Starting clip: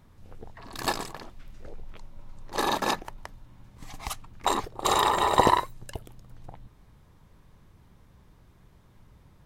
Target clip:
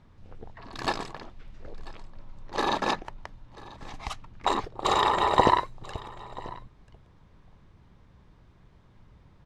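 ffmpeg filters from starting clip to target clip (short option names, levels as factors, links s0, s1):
-af "lowpass=4900,aecho=1:1:989:0.1"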